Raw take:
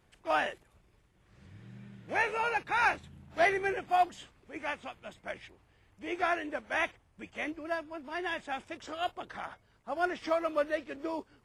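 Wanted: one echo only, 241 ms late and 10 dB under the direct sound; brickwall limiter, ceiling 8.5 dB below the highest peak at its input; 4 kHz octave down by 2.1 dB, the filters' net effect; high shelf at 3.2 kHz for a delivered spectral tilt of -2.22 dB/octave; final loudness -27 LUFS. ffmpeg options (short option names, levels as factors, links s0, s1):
-af "highshelf=f=3200:g=4.5,equalizer=f=4000:t=o:g=-6.5,alimiter=level_in=1.06:limit=0.0631:level=0:latency=1,volume=0.944,aecho=1:1:241:0.316,volume=2.99"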